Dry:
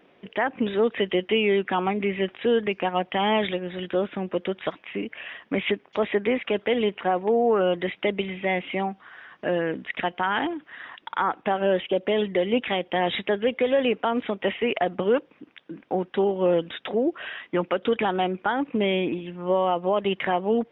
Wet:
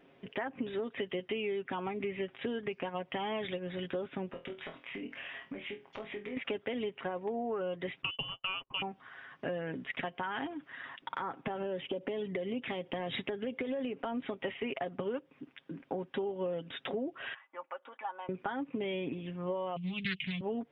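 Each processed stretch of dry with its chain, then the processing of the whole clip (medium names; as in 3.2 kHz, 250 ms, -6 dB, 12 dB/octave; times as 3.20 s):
4.30–6.37 s: compression 10:1, threshold -35 dBFS + flutter echo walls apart 4.1 m, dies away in 0.24 s
8.02–8.82 s: gate -33 dBFS, range -46 dB + frequency inversion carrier 3.2 kHz
11.02–14.25 s: high-pass 100 Hz + bass shelf 470 Hz +5.5 dB + compression 3:1, threshold -23 dBFS
17.34–18.29 s: ladder band-pass 1.1 kHz, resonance 45% + comb 3.5 ms, depth 49%
19.76–20.41 s: FFT filter 120 Hz 0 dB, 190 Hz +10 dB, 300 Hz -14 dB, 480 Hz -29 dB, 1.7 kHz -16 dB, 2.5 kHz +13 dB, 6 kHz +4 dB + loudspeaker Doppler distortion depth 0.36 ms
whole clip: tone controls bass +5 dB, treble -1 dB; comb 7.4 ms, depth 48%; compression, threshold -27 dBFS; trim -6 dB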